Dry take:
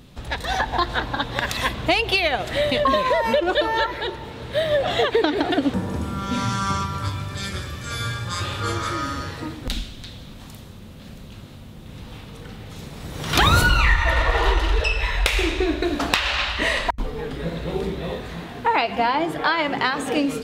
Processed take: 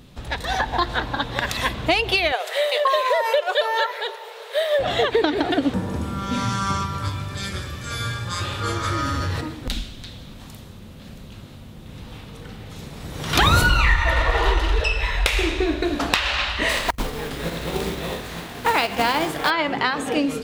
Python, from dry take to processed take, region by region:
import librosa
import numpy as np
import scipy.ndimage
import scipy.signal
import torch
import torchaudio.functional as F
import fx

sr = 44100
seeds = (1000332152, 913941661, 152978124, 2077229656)

y = fx.chain(x, sr, fx.brickwall_highpass(low_hz=390.0),
    fx.high_shelf(hz=11000.0, db=10.5), at=(2.32, 4.79))
y = fx.chain(y, sr, fx.peak_eq(hz=92.0, db=8.5, octaves=0.58),
    fx.env_flatten(amount_pct=70), at=(8.84, 9.41))
y = fx.spec_flatten(y, sr, power=0.7, at=(16.68, 19.49), fade=0.02)
y = fx.quant_float(y, sr, bits=2, at=(16.68, 19.49), fade=0.02)